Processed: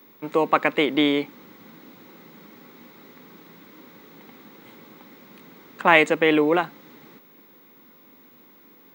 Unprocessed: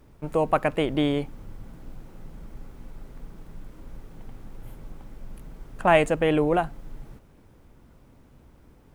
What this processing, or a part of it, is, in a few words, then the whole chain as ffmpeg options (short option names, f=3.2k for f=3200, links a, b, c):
old television with a line whistle: -af "highpass=f=210:w=0.5412,highpass=f=210:w=1.3066,equalizer=f=670:t=q:w=4:g=-8,equalizer=f=1.1k:t=q:w=4:g=3,equalizer=f=2.1k:t=q:w=4:g=8,equalizer=f=3.8k:t=q:w=4:g=9,lowpass=f=7.3k:w=0.5412,lowpass=f=7.3k:w=1.3066,aeval=exprs='val(0)+0.00158*sin(2*PI*15625*n/s)':c=same,volume=4dB"